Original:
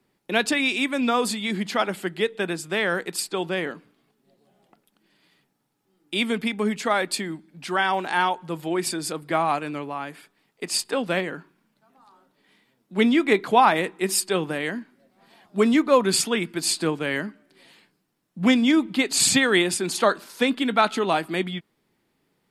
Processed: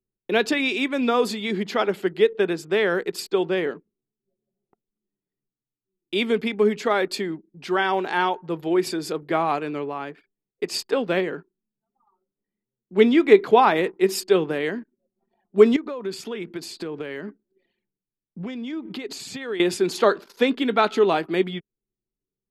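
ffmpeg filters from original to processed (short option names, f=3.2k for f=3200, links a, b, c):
-filter_complex "[0:a]asettb=1/sr,asplit=3[a][b][c];[a]atrim=end=15.764[d];[b]atrim=start=15.76:end=19.6,asetpts=PTS-STARTPTS,afade=t=in:d=0.004:c=qsin,afade=t=out:st=3.836:d=0.004:c=qsin,acompressor=threshold=-29dB:ratio=12:attack=3.2:release=140:knee=1:detection=peak[e];[c]atrim=start=19.596[f];[d][e]acrossfade=d=0.004:c1=hsin:c2=qsin[g];[g][f]acrossfade=d=0.004:c1=qsin:c2=hsin,equalizer=f=9.1k:t=o:w=0.51:g=-11.5,anlmdn=0.0398,equalizer=f=410:t=o:w=0.51:g=10,volume=-1dB"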